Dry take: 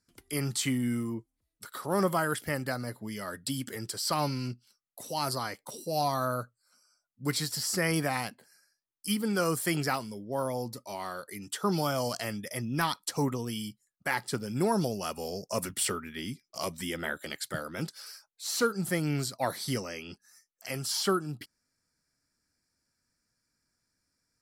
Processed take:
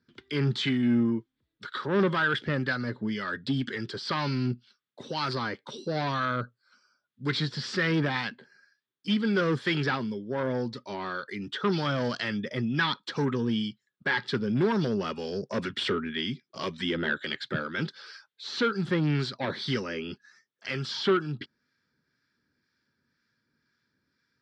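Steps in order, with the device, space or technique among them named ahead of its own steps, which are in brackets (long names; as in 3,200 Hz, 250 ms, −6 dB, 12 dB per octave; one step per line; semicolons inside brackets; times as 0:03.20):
guitar amplifier with harmonic tremolo (two-band tremolo in antiphase 2 Hz, depth 50%, crossover 1,000 Hz; soft clipping −29 dBFS, distortion −11 dB; loudspeaker in its box 90–4,300 Hz, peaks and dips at 140 Hz +4 dB, 230 Hz +5 dB, 390 Hz +6 dB, 700 Hz −9 dB, 1,600 Hz +7 dB, 3,500 Hz +8 dB)
level +6.5 dB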